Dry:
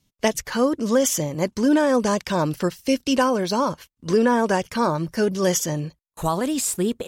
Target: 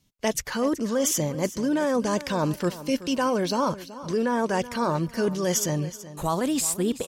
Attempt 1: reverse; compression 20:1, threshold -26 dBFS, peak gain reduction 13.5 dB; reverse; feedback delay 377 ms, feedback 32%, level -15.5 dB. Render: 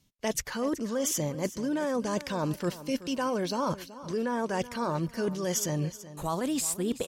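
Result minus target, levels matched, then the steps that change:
compression: peak gain reduction +5.5 dB
change: compression 20:1, threshold -20 dBFS, peak gain reduction 8 dB

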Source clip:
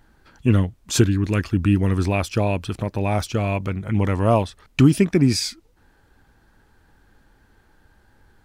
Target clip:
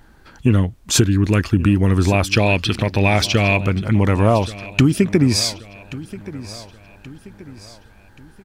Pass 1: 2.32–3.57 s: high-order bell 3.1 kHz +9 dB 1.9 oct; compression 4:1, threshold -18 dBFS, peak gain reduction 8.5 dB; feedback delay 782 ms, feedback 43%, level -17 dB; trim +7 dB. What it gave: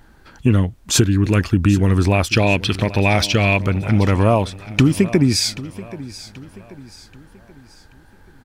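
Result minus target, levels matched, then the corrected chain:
echo 347 ms early
2.32–3.57 s: high-order bell 3.1 kHz +9 dB 1.9 oct; compression 4:1, threshold -18 dBFS, peak gain reduction 8.5 dB; feedback delay 1129 ms, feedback 43%, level -17 dB; trim +7 dB

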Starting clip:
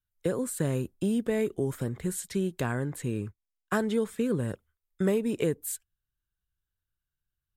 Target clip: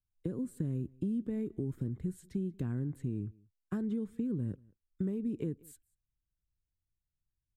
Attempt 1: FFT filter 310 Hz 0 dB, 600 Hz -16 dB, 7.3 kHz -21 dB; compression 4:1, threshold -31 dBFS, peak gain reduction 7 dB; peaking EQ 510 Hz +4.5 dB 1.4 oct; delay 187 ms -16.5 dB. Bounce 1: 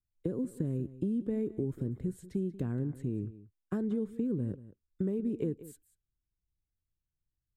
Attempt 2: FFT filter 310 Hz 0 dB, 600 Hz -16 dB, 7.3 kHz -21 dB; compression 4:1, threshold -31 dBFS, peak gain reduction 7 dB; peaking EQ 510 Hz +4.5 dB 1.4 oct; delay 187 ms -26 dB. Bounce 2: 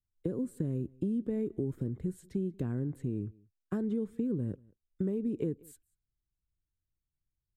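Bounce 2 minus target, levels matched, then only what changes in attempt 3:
500 Hz band +3.5 dB
change: peaking EQ 510 Hz -2 dB 1.4 oct

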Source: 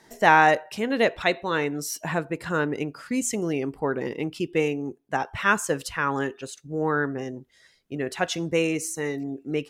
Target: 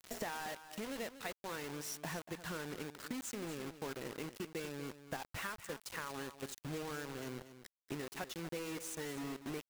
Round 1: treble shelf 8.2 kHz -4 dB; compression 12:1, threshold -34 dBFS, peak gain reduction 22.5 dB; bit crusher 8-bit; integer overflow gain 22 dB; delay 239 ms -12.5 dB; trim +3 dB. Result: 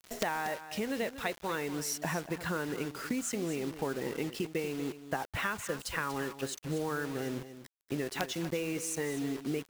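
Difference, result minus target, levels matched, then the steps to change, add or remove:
compression: peak gain reduction -9 dB
change: compression 12:1, threshold -44 dBFS, peak gain reduction 31.5 dB

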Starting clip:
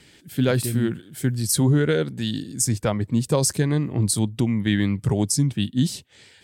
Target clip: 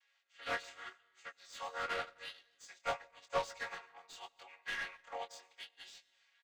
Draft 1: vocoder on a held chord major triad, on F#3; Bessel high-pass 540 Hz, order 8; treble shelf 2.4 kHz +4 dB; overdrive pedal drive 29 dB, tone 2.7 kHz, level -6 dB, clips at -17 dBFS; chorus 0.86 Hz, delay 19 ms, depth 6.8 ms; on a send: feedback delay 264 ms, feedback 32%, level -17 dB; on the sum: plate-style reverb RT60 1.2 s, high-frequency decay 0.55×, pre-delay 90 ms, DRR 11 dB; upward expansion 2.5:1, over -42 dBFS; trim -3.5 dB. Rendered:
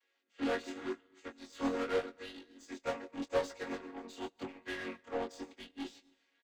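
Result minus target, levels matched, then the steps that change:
1 kHz band -4.5 dB
change: Bessel high-pass 1.1 kHz, order 8

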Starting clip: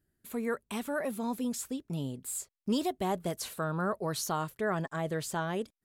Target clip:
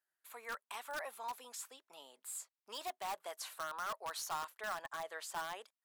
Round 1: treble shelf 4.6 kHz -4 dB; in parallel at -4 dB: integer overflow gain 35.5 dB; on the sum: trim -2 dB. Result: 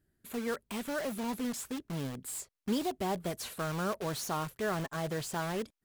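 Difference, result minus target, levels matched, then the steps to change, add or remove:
500 Hz band +4.5 dB
add first: ladder high-pass 700 Hz, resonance 30%

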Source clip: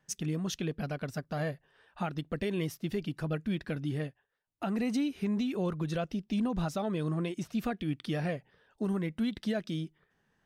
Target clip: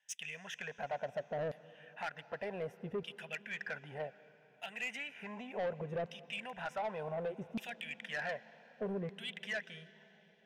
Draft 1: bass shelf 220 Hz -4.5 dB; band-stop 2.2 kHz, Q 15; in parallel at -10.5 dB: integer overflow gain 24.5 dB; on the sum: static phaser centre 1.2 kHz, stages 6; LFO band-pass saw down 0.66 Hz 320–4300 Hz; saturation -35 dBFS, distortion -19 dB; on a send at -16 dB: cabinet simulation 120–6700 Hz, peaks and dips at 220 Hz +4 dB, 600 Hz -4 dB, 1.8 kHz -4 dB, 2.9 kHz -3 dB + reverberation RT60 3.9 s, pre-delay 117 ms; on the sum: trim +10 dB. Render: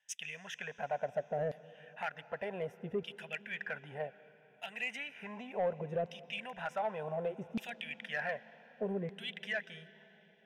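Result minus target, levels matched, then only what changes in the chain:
saturation: distortion -8 dB
change: saturation -42 dBFS, distortion -11 dB

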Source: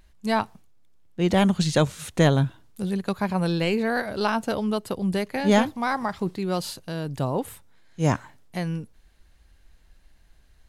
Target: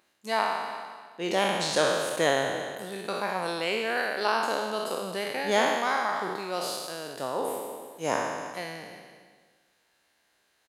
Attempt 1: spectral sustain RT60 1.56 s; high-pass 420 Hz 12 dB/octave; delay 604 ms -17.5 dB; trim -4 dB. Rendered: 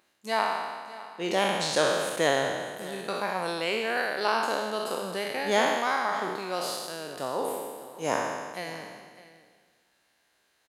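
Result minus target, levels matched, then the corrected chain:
echo 261 ms late
spectral sustain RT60 1.56 s; high-pass 420 Hz 12 dB/octave; delay 343 ms -17.5 dB; trim -4 dB

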